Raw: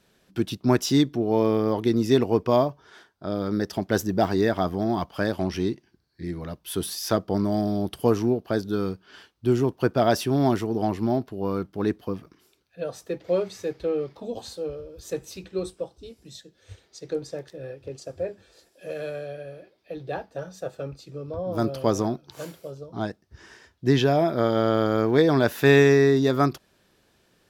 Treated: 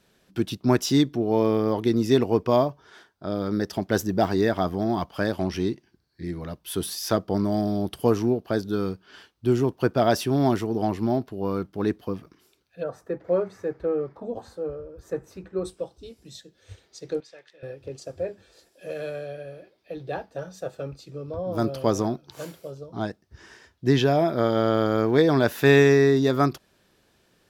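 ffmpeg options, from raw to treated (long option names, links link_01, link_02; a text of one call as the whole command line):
ffmpeg -i in.wav -filter_complex "[0:a]asplit=3[link_01][link_02][link_03];[link_01]afade=type=out:start_time=12.82:duration=0.02[link_04];[link_02]highshelf=frequency=2200:width_type=q:width=1.5:gain=-12,afade=type=in:start_time=12.82:duration=0.02,afade=type=out:start_time=15.64:duration=0.02[link_05];[link_03]afade=type=in:start_time=15.64:duration=0.02[link_06];[link_04][link_05][link_06]amix=inputs=3:normalize=0,asettb=1/sr,asplit=3[link_07][link_08][link_09];[link_07]atrim=end=17.204[link_10];[link_08]atrim=start=17.2:end=17.63,asetpts=PTS-STARTPTS,afade=type=in:duration=0.004:curve=qsin,afade=type=out:start_time=0.426:duration=0.004:curve=qsin,bandpass=frequency=2400:width_type=q:width=1.2[link_11];[link_09]atrim=start=17.626[link_12];[link_10][link_11]acrossfade=duration=0.004:curve1=hsin:curve2=qsin[link_13];[link_13][link_12]acrossfade=duration=0.004:curve1=qsin:curve2=hsin" out.wav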